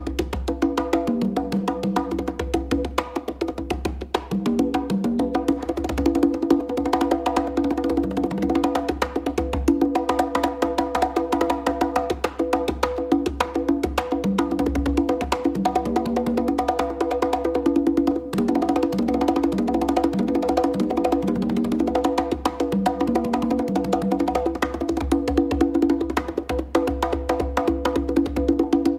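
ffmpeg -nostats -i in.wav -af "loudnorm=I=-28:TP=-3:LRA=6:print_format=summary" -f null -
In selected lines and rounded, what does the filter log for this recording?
Input Integrated:    -22.8 LUFS
Input True Peak:      -4.0 dBTP
Input LRA:             2.7 LU
Input Threshold:     -32.8 LUFS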